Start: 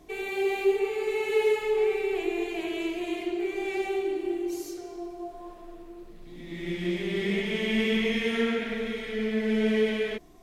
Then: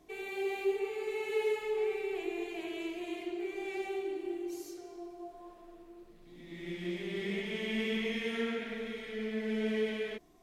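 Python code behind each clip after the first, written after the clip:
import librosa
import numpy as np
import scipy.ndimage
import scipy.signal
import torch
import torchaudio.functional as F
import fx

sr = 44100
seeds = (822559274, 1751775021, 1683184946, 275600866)

y = fx.low_shelf(x, sr, hz=93.0, db=-6.5)
y = F.gain(torch.from_numpy(y), -7.5).numpy()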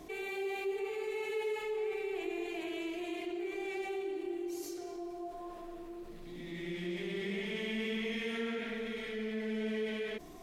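y = fx.env_flatten(x, sr, amount_pct=50)
y = F.gain(torch.from_numpy(y), -6.0).numpy()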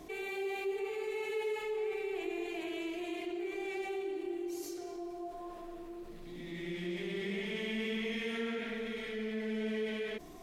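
y = x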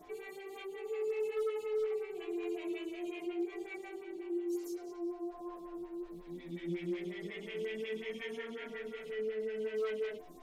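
y = fx.stiff_resonator(x, sr, f0_hz=85.0, decay_s=0.23, stiffness=0.002)
y = 10.0 ** (-35.0 / 20.0) * (np.abs((y / 10.0 ** (-35.0 / 20.0) + 3.0) % 4.0 - 2.0) - 1.0)
y = fx.stagger_phaser(y, sr, hz=5.5)
y = F.gain(torch.from_numpy(y), 6.5).numpy()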